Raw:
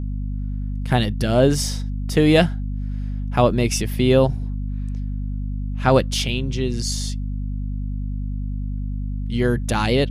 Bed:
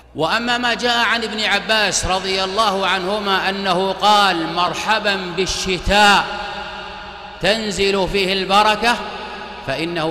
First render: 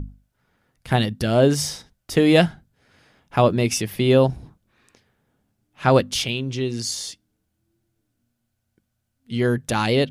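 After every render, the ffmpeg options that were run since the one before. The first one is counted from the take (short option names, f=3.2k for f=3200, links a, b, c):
-af "bandreject=f=50:t=h:w=6,bandreject=f=100:t=h:w=6,bandreject=f=150:t=h:w=6,bandreject=f=200:t=h:w=6,bandreject=f=250:t=h:w=6"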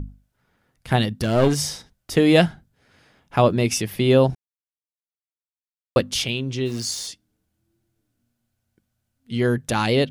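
-filter_complex "[0:a]asettb=1/sr,asplit=3[a][b][c];[a]atrim=end=1.084[d];[b]atrim=start=1.08:end=1.59,asetpts=PTS-STARTPTS,afade=t=in:d=0.004:c=qsin,afade=t=out:st=0.506:d=0.004:c=qsin,aeval=exprs='clip(val(0),-1,0.112)':c=same[e];[c]atrim=start=1.586[f];[d][e]acrossfade=d=0.004:c1=hsin:c2=qsin[g];[g][f]acrossfade=d=0.004:c1=qsin:c2=hsin,asplit=3[h][i][j];[h]afade=t=out:st=6.65:d=0.02[k];[i]aeval=exprs='val(0)*gte(abs(val(0)),0.0133)':c=same,afade=t=in:st=6.65:d=0.02,afade=t=out:st=7.06:d=0.02[l];[j]afade=t=in:st=7.06:d=0.02[m];[k][l][m]amix=inputs=3:normalize=0,asplit=3[n][o][p];[n]atrim=end=4.35,asetpts=PTS-STARTPTS,afade=t=out:st=4.346:d=0.004:c=hsin[q];[o]atrim=start=4.35:end=5.96,asetpts=PTS-STARTPTS,volume=0[r];[p]atrim=start=5.96,asetpts=PTS-STARTPTS,afade=t=in:d=0.004:c=hsin[s];[q][r][s]concat=n=3:v=0:a=1"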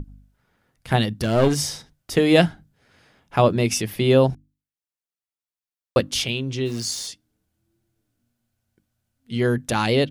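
-af "bandreject=f=50:t=h:w=6,bandreject=f=100:t=h:w=6,bandreject=f=150:t=h:w=6,bandreject=f=200:t=h:w=6,bandreject=f=250:t=h:w=6,bandreject=f=300:t=h:w=6"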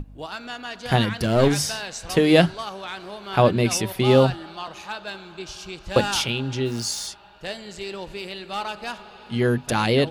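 -filter_complex "[1:a]volume=-16.5dB[a];[0:a][a]amix=inputs=2:normalize=0"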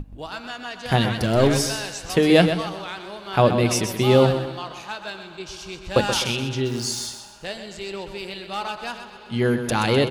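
-af "aecho=1:1:127|254|381|508|635:0.355|0.145|0.0596|0.0245|0.01"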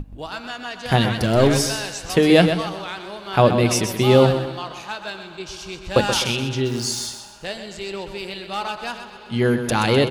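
-af "volume=2dB,alimiter=limit=-3dB:level=0:latency=1"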